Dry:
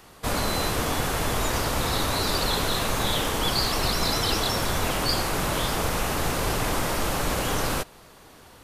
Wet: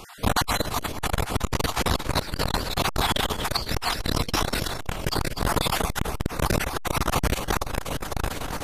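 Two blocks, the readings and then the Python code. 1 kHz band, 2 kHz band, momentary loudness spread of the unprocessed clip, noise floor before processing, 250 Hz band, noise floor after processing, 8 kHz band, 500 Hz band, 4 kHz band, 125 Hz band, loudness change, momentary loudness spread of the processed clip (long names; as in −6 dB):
0.0 dB, −0.5 dB, 3 LU, −50 dBFS, 0.0 dB, −35 dBFS, −2.5 dB, −1.5 dB, −2.0 dB, +1.5 dB, −1.0 dB, 6 LU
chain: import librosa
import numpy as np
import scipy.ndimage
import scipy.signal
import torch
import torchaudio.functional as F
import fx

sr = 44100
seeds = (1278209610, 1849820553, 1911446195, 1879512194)

y = fx.spec_dropout(x, sr, seeds[0], share_pct=30)
y = fx.high_shelf(y, sr, hz=4700.0, db=-3.0)
y = fx.echo_feedback(y, sr, ms=499, feedback_pct=35, wet_db=-13)
y = fx.rider(y, sr, range_db=10, speed_s=0.5)
y = fx.step_gate(y, sr, bpm=122, pattern='xxxxx.x.xx.', floor_db=-12.0, edge_ms=4.5)
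y = fx.low_shelf(y, sr, hz=85.0, db=4.0)
y = y + 10.0 ** (-10.0 / 20.0) * np.pad(y, (int(245 * sr / 1000.0), 0))[:len(y)]
y = fx.transformer_sat(y, sr, knee_hz=350.0)
y = F.gain(torch.from_numpy(y), 7.0).numpy()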